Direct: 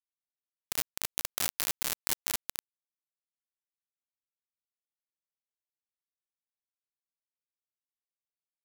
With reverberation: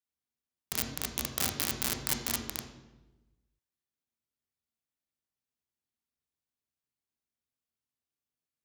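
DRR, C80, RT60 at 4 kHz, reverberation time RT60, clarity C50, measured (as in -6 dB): 3.0 dB, 8.5 dB, 0.80 s, 1.1 s, 6.5 dB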